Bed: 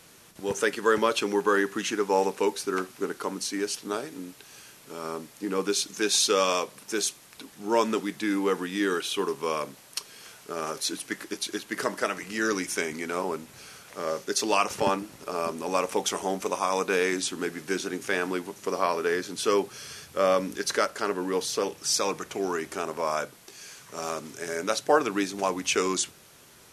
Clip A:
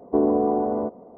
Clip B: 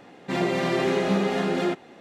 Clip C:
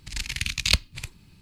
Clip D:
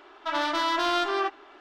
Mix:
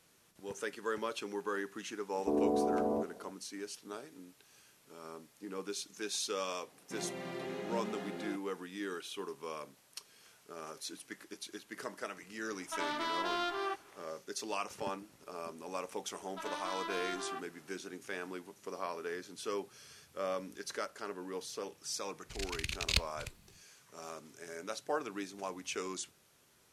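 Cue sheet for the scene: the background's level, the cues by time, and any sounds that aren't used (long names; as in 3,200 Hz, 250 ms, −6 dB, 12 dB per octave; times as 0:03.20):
bed −14 dB
0:02.14: mix in A −7.5 dB + brickwall limiter −15.5 dBFS
0:06.62: mix in B −18 dB
0:12.46: mix in D −10 dB
0:16.11: mix in D −15 dB
0:22.23: mix in C −10 dB, fades 0.10 s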